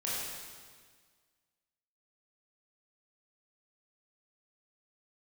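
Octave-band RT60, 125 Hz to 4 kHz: 1.8, 1.8, 1.7, 1.7, 1.6, 1.6 seconds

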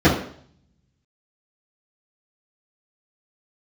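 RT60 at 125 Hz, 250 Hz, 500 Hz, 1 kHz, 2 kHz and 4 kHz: 0.95, 0.60, 0.60, 0.55, 0.55, 0.60 seconds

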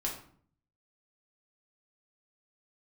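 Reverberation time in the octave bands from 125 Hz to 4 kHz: 0.90, 0.75, 0.55, 0.50, 0.45, 0.35 seconds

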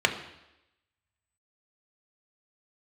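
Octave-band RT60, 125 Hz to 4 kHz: 0.80, 0.90, 0.90, 0.90, 0.90, 0.90 seconds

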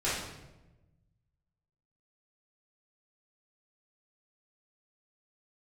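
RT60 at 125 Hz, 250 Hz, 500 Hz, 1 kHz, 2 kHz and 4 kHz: 1.9, 1.5, 1.2, 0.90, 0.85, 0.70 seconds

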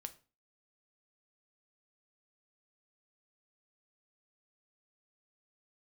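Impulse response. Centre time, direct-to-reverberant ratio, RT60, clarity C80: 5 ms, 8.5 dB, 0.35 s, 22.0 dB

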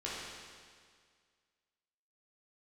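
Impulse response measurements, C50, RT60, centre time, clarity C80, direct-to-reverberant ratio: −2.0 dB, 1.9 s, 121 ms, 0.0 dB, −8.0 dB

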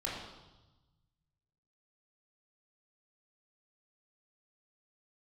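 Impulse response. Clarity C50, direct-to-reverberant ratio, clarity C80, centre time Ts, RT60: 1.5 dB, −5.5 dB, 3.5 dB, 65 ms, 1.1 s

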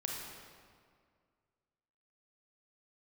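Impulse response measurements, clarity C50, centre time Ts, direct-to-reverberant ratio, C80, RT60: 0.5 dB, 94 ms, −1.5 dB, 2.0 dB, 2.0 s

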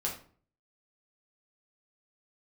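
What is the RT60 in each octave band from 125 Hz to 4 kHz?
0.65, 0.55, 0.50, 0.45, 0.35, 0.30 seconds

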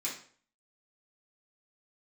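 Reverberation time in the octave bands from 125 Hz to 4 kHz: 0.50, 0.50, 0.50, 0.45, 0.45, 0.40 seconds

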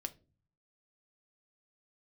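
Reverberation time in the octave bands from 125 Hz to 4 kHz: 0.90, 0.65, 0.45, 0.25, 0.25, 0.25 seconds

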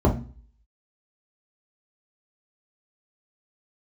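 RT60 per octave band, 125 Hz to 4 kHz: 0.50, 0.45, 0.40, 0.35, 0.35, 0.45 seconds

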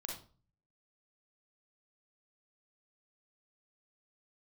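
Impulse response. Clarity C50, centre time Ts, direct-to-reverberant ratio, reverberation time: 3.0 dB, 32 ms, −0.5 dB, 0.40 s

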